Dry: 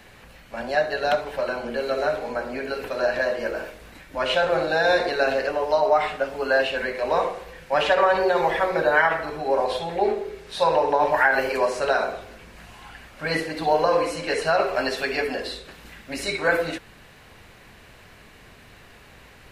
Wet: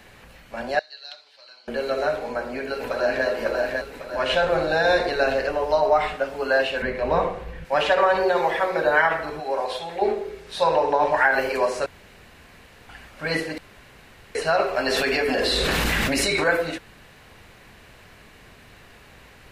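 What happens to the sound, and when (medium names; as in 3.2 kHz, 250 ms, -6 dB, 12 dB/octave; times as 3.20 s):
0.79–1.68 s: band-pass filter 4.4 kHz, Q 4.4
2.25–3.26 s: echo throw 550 ms, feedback 50%, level -3 dB
4.31–6.14 s: bass shelf 93 Hz +11 dB
6.82–7.65 s: tone controls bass +12 dB, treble -8 dB
8.39–8.83 s: bass shelf 140 Hz -9 dB
9.40–10.02 s: bass shelf 500 Hz -9 dB
10.61–11.24 s: low-pass 9.9 kHz 24 dB/octave
11.86–12.89 s: room tone
13.58–14.35 s: room tone
14.86–16.44 s: level flattener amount 100%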